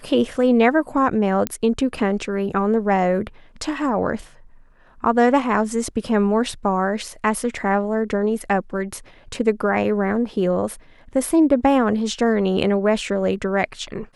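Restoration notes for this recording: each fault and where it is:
1.47 pop -7 dBFS

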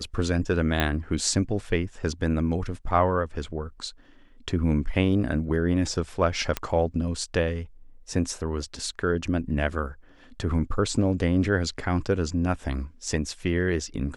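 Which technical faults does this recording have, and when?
0.8 pop -10 dBFS
6.57 pop -10 dBFS

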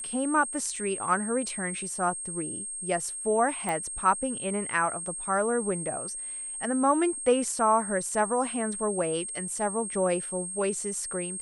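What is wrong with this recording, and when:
tone 8500 Hz -34 dBFS
0.76 gap 2.5 ms
3.69 pop -17 dBFS

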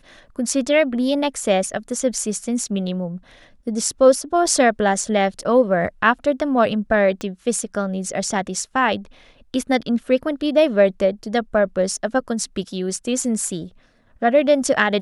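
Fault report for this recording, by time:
7.21 pop -15 dBFS

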